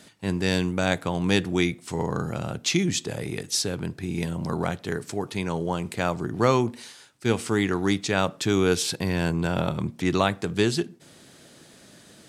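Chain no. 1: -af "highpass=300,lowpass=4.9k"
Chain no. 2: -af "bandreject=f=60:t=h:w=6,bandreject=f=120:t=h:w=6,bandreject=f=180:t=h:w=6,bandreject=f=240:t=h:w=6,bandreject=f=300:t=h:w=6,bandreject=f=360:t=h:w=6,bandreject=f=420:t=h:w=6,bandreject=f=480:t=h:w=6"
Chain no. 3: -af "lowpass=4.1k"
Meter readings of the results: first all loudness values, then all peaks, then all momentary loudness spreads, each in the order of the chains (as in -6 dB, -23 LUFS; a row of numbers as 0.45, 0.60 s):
-28.5, -26.5, -26.5 LUFS; -7.5, -5.5, -5.5 dBFS; 10, 8, 8 LU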